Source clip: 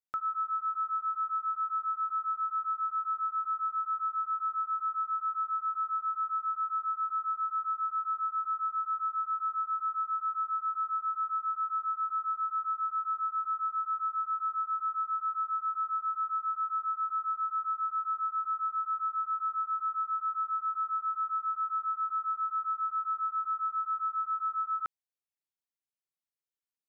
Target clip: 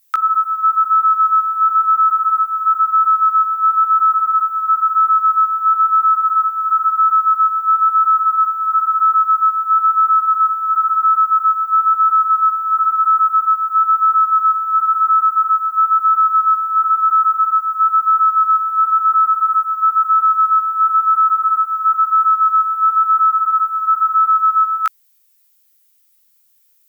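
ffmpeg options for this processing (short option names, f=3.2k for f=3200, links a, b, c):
-af "flanger=delay=16:depth=2.1:speed=0.99,highpass=1.3k,aemphasis=mode=production:type=50fm,apsyclip=34dB,volume=-8.5dB"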